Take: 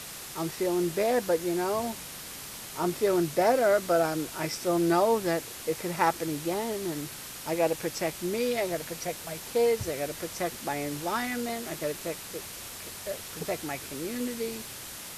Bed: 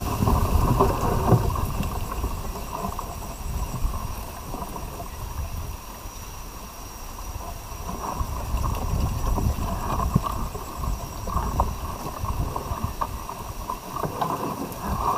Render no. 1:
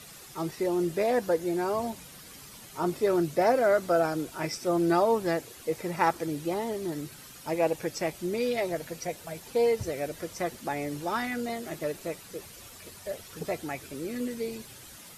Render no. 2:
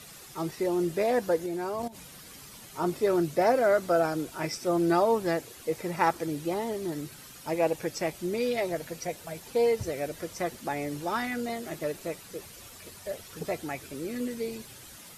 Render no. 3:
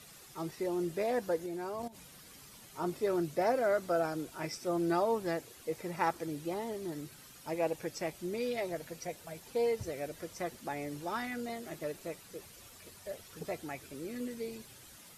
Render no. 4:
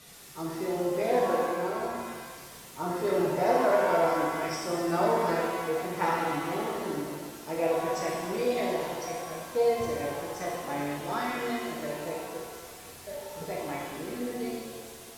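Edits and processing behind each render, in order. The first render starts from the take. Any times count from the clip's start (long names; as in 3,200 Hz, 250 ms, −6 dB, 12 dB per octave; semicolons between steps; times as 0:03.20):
broadband denoise 10 dB, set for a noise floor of −42 dBFS
0:01.46–0:01.95: output level in coarse steps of 16 dB
level −6.5 dB
reverb with rising layers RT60 1.7 s, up +7 semitones, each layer −8 dB, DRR −4 dB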